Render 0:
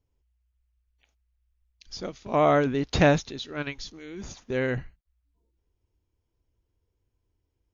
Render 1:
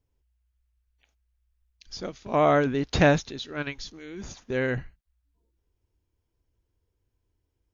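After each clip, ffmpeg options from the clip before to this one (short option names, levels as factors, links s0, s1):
-af "equalizer=f=1600:w=5.5:g=2.5"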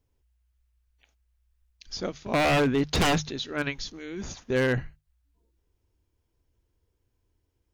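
-af "aeval=exprs='0.1*(abs(mod(val(0)/0.1+3,4)-2)-1)':c=same,bandreject=f=50:t=h:w=6,bandreject=f=100:t=h:w=6,bandreject=f=150:t=h:w=6,volume=1.41"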